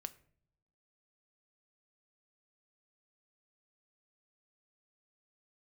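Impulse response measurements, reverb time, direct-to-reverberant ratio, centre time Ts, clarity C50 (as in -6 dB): no single decay rate, 11.0 dB, 4 ms, 18.5 dB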